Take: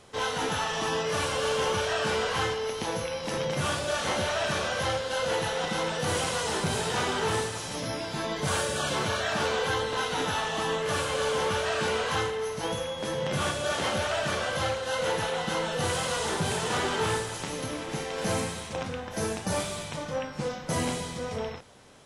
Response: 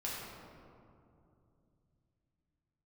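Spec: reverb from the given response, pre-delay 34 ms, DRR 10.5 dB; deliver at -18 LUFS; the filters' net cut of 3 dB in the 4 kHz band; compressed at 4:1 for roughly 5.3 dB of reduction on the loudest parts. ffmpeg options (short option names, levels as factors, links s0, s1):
-filter_complex "[0:a]equalizer=f=4000:t=o:g=-4,acompressor=threshold=0.0282:ratio=4,asplit=2[s0][s1];[1:a]atrim=start_sample=2205,adelay=34[s2];[s1][s2]afir=irnorm=-1:irlink=0,volume=0.224[s3];[s0][s3]amix=inputs=2:normalize=0,volume=5.62"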